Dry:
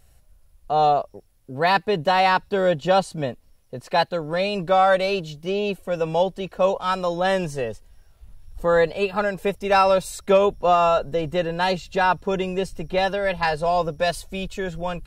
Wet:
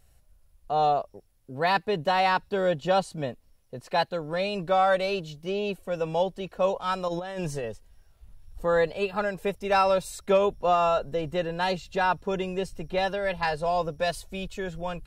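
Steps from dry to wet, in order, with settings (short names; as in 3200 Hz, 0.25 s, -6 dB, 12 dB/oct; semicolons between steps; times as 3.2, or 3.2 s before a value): 7.08–7.64 negative-ratio compressor -27 dBFS, ratio -1; gain -5 dB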